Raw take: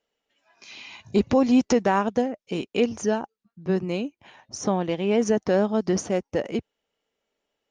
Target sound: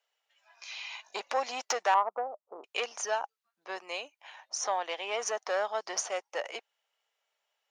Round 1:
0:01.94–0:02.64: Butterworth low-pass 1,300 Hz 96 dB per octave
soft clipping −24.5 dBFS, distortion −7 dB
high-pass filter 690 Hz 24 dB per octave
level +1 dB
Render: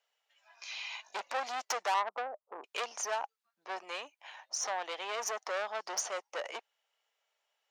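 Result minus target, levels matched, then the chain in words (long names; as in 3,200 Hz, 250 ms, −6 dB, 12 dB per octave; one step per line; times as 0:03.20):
soft clipping: distortion +12 dB
0:01.94–0:02.64: Butterworth low-pass 1,300 Hz 96 dB per octave
soft clipping −13 dBFS, distortion −19 dB
high-pass filter 690 Hz 24 dB per octave
level +1 dB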